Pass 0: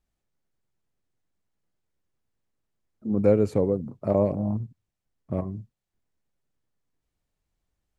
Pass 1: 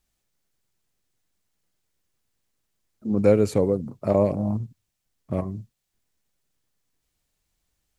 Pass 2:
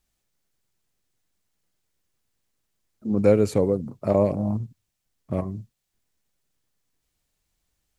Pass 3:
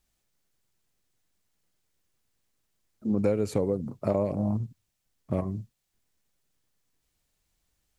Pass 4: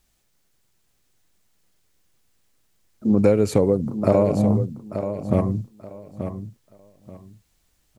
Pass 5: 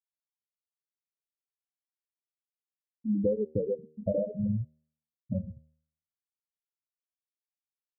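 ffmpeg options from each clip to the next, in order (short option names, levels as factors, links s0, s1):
-af "highshelf=f=2100:g=10.5,volume=1.19"
-af anull
-af "acompressor=threshold=0.0794:ratio=5"
-af "aecho=1:1:882|1764|2646:0.335|0.077|0.0177,volume=2.66"
-af "afftfilt=real='re*gte(hypot(re,im),0.708)':imag='im*gte(hypot(re,im),0.708)':win_size=1024:overlap=0.75,bandreject=f=77.41:t=h:w=4,bandreject=f=154.82:t=h:w=4,bandreject=f=232.23:t=h:w=4,bandreject=f=309.64:t=h:w=4,bandreject=f=387.05:t=h:w=4,bandreject=f=464.46:t=h:w=4,bandreject=f=541.87:t=h:w=4,bandreject=f=619.28:t=h:w=4,bandreject=f=696.69:t=h:w=4,bandreject=f=774.1:t=h:w=4,volume=0.355"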